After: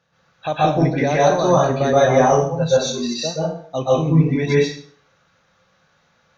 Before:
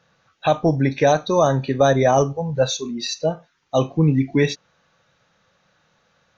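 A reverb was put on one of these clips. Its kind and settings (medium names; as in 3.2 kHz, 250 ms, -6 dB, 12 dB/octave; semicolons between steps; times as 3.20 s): plate-style reverb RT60 0.52 s, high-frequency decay 0.85×, pre-delay 115 ms, DRR -8 dB; trim -6 dB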